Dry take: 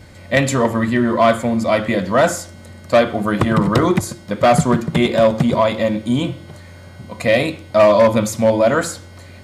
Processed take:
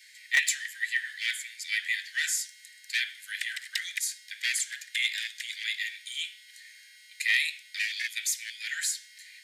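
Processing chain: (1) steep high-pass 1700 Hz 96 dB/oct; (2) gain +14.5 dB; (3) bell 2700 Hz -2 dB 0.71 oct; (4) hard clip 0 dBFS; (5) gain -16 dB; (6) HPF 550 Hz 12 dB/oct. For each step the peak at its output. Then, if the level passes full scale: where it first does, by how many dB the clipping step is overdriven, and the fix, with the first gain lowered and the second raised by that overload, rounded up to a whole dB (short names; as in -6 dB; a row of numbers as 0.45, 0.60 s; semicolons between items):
-6.5, +8.0, +7.0, 0.0, -16.0, -13.0 dBFS; step 2, 7.0 dB; step 2 +7.5 dB, step 5 -9 dB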